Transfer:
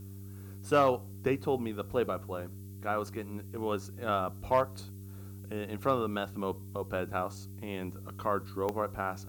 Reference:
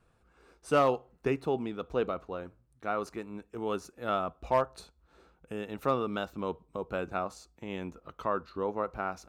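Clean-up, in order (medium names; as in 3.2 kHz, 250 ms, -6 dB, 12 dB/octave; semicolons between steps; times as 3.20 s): de-click; de-hum 97.8 Hz, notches 4; noise print and reduce 22 dB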